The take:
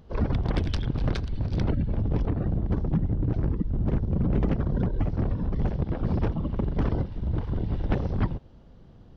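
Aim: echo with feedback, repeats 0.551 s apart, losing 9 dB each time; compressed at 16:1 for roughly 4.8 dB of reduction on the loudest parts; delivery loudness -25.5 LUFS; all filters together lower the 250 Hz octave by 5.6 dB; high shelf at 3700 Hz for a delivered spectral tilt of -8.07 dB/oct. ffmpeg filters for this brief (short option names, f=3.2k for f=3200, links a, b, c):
-af "equalizer=f=250:t=o:g=-8.5,highshelf=f=3.7k:g=-3.5,acompressor=threshold=-26dB:ratio=16,aecho=1:1:551|1102|1653|2204:0.355|0.124|0.0435|0.0152,volume=8dB"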